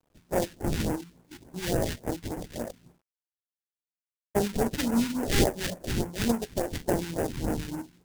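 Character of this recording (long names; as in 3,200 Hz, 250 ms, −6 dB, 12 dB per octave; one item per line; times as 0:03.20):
aliases and images of a low sample rate 1,200 Hz, jitter 20%
phaser sweep stages 2, 3.5 Hz, lowest notch 570–3,700 Hz
a quantiser's noise floor 12 bits, dither none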